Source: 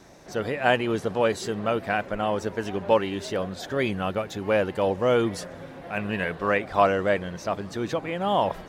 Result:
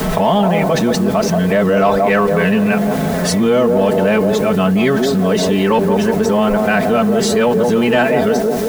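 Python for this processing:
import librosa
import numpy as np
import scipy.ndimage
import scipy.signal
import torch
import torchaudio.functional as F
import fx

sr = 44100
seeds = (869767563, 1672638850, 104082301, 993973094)

p1 = x[::-1].copy()
p2 = fx.peak_eq(p1, sr, hz=150.0, db=7.0, octaves=1.5)
p3 = p2 + 0.69 * np.pad(p2, (int(4.6 * sr / 1000.0), 0))[:len(p2)]
p4 = fx.echo_wet_bandpass(p3, sr, ms=177, feedback_pct=37, hz=450.0, wet_db=-5)
p5 = 10.0 ** (-17.5 / 20.0) * np.tanh(p4 / 10.0 ** (-17.5 / 20.0))
p6 = p4 + (p5 * librosa.db_to_amplitude(-4.5))
p7 = fx.quant_dither(p6, sr, seeds[0], bits=8, dither='triangular')
y = fx.env_flatten(p7, sr, amount_pct=70)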